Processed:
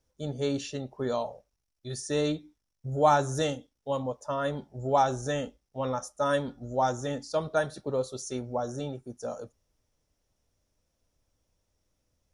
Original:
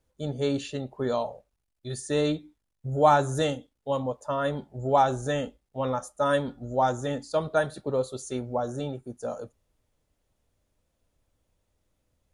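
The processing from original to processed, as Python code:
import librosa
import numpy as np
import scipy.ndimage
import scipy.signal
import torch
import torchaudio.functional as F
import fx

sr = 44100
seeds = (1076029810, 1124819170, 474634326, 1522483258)

y = fx.peak_eq(x, sr, hz=5600.0, db=12.5, octaves=0.27)
y = F.gain(torch.from_numpy(y), -2.5).numpy()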